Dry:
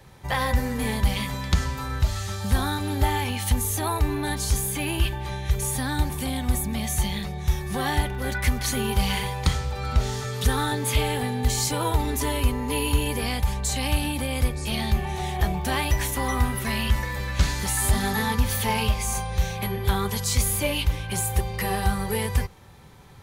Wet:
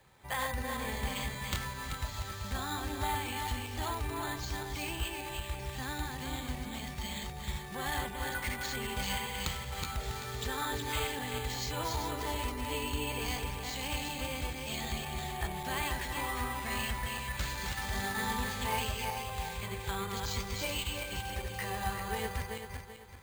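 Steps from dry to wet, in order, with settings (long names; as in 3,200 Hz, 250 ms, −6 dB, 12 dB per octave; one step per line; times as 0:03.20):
feedback delay that plays each chunk backwards 193 ms, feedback 58%, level −3 dB
bad sample-rate conversion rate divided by 4×, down filtered, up hold
low-shelf EQ 450 Hz −9 dB
level −8 dB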